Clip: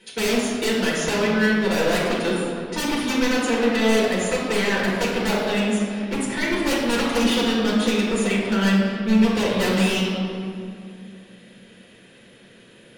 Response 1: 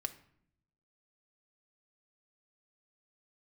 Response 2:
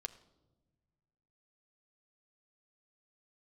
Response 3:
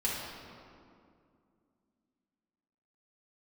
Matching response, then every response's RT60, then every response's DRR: 3; 0.65 s, non-exponential decay, 2.4 s; 6.0, 8.5, −6.5 decibels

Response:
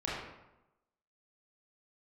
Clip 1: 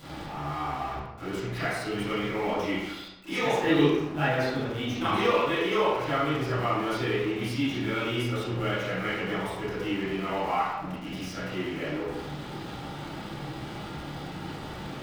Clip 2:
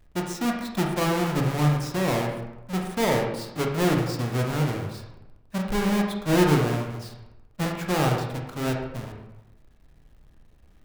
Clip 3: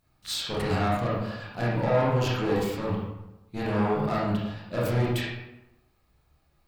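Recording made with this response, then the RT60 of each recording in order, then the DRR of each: 3; 0.95, 0.95, 0.95 seconds; −13.0, 0.5, −7.5 decibels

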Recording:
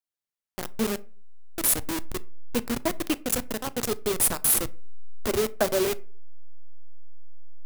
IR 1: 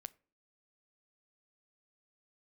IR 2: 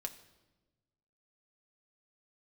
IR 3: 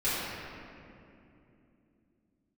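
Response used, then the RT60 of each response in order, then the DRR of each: 1; 0.40, 1.2, 2.8 seconds; 16.0, 4.5, −14.5 decibels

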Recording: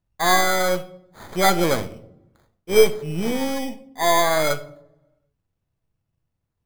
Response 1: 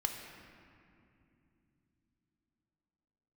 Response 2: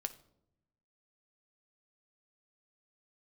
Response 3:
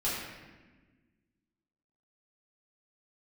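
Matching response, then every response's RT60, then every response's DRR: 2; 2.7 s, non-exponential decay, 1.3 s; 2.5, 9.0, −10.0 decibels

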